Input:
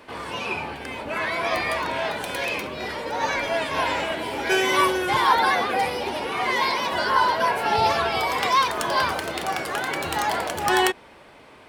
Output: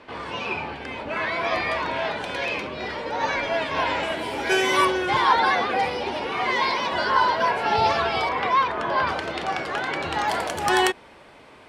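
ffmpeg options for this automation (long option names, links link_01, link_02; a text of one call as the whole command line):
ffmpeg -i in.wav -af "asetnsamples=nb_out_samples=441:pad=0,asendcmd='4.03 lowpass f 11000;4.85 lowpass f 5600;8.29 lowpass f 2400;9.07 lowpass f 4600;10.28 lowpass f 11000',lowpass=5000" out.wav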